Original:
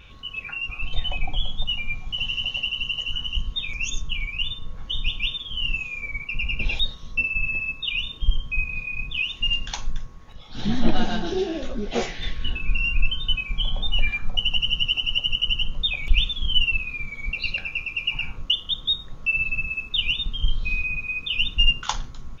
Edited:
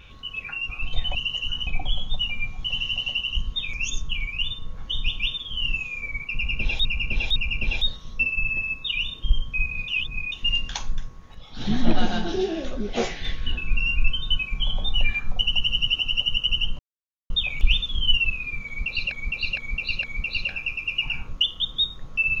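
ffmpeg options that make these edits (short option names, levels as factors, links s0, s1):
-filter_complex "[0:a]asplit=12[s0][s1][s2][s3][s4][s5][s6][s7][s8][s9][s10][s11];[s0]atrim=end=1.152[s12];[s1]atrim=start=2.788:end=3.312[s13];[s2]atrim=start=1.148:end=2.792[s14];[s3]atrim=start=3.308:end=6.852[s15];[s4]atrim=start=6.338:end=6.852[s16];[s5]atrim=start=6.338:end=8.862[s17];[s6]atrim=start=8.858:end=9.302,asetpts=PTS-STARTPTS,areverse[s18];[s7]atrim=start=9.298:end=15.77,asetpts=PTS-STARTPTS,afade=t=out:st=6.468:d=0.004:c=hsin,apad=pad_dur=0.51[s19];[s8]atrim=start=15.77:end=17.592,asetpts=PTS-STARTPTS,afade=t=in:d=0.004:c=hsin[s20];[s9]atrim=start=17.128:end=17.592[s21];[s10]atrim=start=17.128:end=17.592[s22];[s11]atrim=start=17.128[s23];[s12][s13]acrossfade=d=0.004:c1=hsin:c2=hsin[s24];[s24][s14]acrossfade=d=0.004:c1=hsin:c2=hsin[s25];[s25][s15]acrossfade=d=0.004:c1=hsin:c2=hsin[s26];[s26][s16]acrossfade=d=0.004:c1=hsin:c2=hsin[s27];[s27][s17]acrossfade=d=0.004:c1=hsin:c2=hsin[s28];[s28][s18]acrossfade=d=0.004:c1=hsin:c2=hsin[s29];[s19][s20]concat=n=2:v=0:a=1[s30];[s29][s30]acrossfade=d=0.004:c1=hsin:c2=hsin[s31];[s31][s21]acrossfade=d=0.004:c1=hsin:c2=hsin[s32];[s32][s22]acrossfade=d=0.004:c1=hsin:c2=hsin[s33];[s33][s23]acrossfade=d=0.004:c1=hsin:c2=hsin"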